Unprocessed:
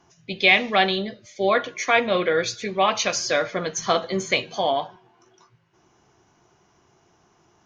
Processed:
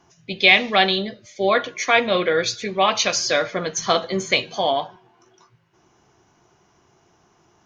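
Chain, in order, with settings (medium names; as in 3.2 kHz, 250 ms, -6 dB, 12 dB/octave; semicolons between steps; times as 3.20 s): dynamic bell 4.1 kHz, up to +4 dB, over -34 dBFS, Q 1.3; trim +1.5 dB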